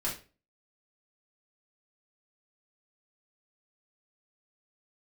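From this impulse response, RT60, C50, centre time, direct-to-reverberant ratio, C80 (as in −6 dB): 0.35 s, 7.5 dB, 26 ms, −6.5 dB, 14.5 dB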